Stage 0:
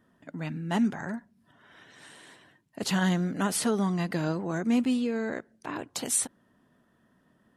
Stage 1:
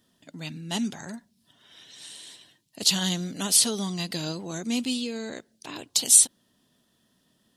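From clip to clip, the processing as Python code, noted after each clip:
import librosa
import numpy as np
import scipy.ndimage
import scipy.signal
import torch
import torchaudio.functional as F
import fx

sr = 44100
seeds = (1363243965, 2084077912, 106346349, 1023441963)

y = fx.high_shelf_res(x, sr, hz=2500.0, db=14.0, q=1.5)
y = y * 10.0 ** (-3.5 / 20.0)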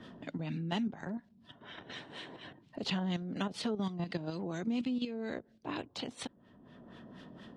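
y = fx.level_steps(x, sr, step_db=10)
y = fx.filter_lfo_lowpass(y, sr, shape='sine', hz=4.2, low_hz=700.0, high_hz=2800.0, q=0.84)
y = fx.band_squash(y, sr, depth_pct=70)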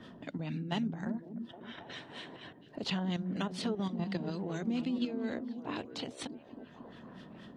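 y = fx.echo_stepped(x, sr, ms=272, hz=190.0, octaves=0.7, feedback_pct=70, wet_db=-4.5)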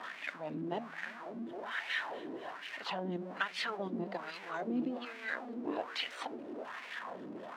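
y = x + 0.5 * 10.0 ** (-41.0 / 20.0) * np.sign(x)
y = fx.wah_lfo(y, sr, hz=1.2, low_hz=310.0, high_hz=2300.0, q=2.8)
y = fx.low_shelf(y, sr, hz=460.0, db=-11.0)
y = y * 10.0 ** (12.5 / 20.0)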